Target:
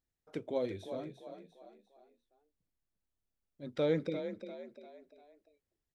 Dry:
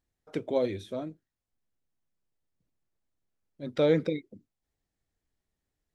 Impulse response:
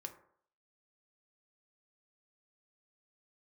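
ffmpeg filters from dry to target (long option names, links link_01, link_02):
-filter_complex "[0:a]asplit=5[link_01][link_02][link_03][link_04][link_05];[link_02]adelay=347,afreqshift=35,volume=-9.5dB[link_06];[link_03]adelay=694,afreqshift=70,volume=-17.2dB[link_07];[link_04]adelay=1041,afreqshift=105,volume=-25dB[link_08];[link_05]adelay=1388,afreqshift=140,volume=-32.7dB[link_09];[link_01][link_06][link_07][link_08][link_09]amix=inputs=5:normalize=0,volume=-7dB"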